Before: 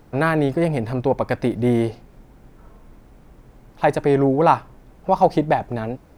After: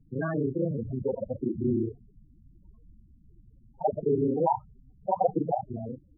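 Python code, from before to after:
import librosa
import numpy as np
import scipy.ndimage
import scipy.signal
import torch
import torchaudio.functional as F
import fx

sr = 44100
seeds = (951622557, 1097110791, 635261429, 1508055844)

y = fx.local_reverse(x, sr, ms=31.0)
y = fx.spec_topn(y, sr, count=8)
y = y * librosa.db_to_amplitude(-7.0)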